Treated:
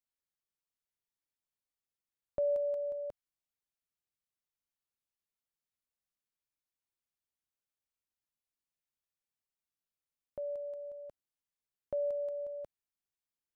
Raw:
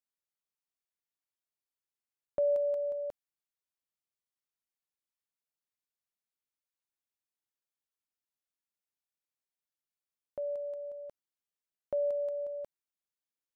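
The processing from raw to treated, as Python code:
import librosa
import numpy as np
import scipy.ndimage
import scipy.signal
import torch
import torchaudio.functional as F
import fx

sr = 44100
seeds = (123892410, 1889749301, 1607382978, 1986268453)

y = fx.low_shelf(x, sr, hz=160.0, db=9.0)
y = y * librosa.db_to_amplitude(-3.5)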